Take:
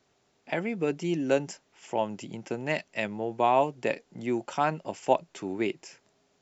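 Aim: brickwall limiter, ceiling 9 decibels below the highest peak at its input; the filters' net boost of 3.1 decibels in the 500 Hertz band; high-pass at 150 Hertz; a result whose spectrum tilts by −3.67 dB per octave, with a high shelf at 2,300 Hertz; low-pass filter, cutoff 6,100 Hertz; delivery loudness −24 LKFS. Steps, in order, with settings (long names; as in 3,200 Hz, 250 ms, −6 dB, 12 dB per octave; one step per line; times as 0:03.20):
high-pass filter 150 Hz
low-pass filter 6,100 Hz
parametric band 500 Hz +3.5 dB
high-shelf EQ 2,300 Hz +7.5 dB
level +6.5 dB
brickwall limiter −9 dBFS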